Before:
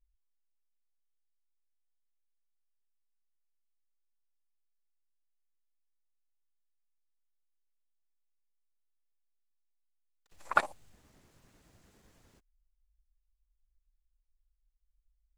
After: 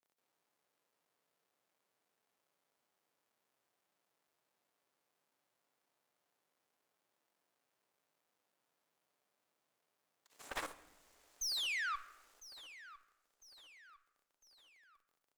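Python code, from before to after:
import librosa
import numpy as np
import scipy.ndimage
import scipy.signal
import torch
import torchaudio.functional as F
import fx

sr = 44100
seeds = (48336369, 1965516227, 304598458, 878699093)

p1 = fx.cycle_switch(x, sr, every=2, mode='inverted')
p2 = scipy.signal.sosfilt(scipy.signal.butter(2, 580.0, 'highpass', fs=sr, output='sos'), p1)
p3 = fx.high_shelf(p2, sr, hz=4600.0, db=5.0)
p4 = fx.level_steps(p3, sr, step_db=15)
p5 = fx.spec_paint(p4, sr, seeds[0], shape='fall', start_s=11.41, length_s=0.55, low_hz=1100.0, high_hz=6500.0, level_db=-40.0)
p6 = fx.tube_stage(p5, sr, drive_db=42.0, bias=0.45)
p7 = p6 + fx.echo_feedback(p6, sr, ms=1003, feedback_pct=47, wet_db=-17, dry=0)
p8 = fx.room_shoebox(p7, sr, seeds[1], volume_m3=480.0, walls='mixed', distance_m=0.31)
y = p8 * 10.0 ** (6.5 / 20.0)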